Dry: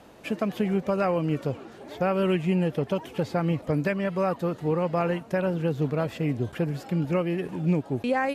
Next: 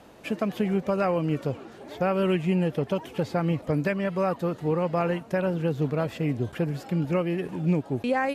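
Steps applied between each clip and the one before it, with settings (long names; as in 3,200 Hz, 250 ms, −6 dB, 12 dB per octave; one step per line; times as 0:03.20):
no processing that can be heard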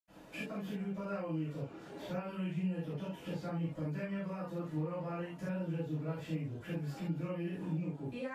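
downward compressor 6 to 1, threshold −33 dBFS, peak gain reduction 13.5 dB
convolution reverb, pre-delay 76 ms
level +8 dB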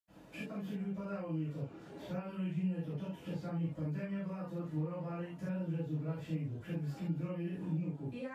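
high-pass filter 48 Hz
low-shelf EQ 220 Hz +7.5 dB
level −4 dB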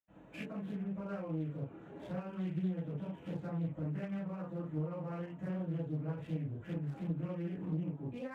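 adaptive Wiener filter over 9 samples
highs frequency-modulated by the lows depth 0.41 ms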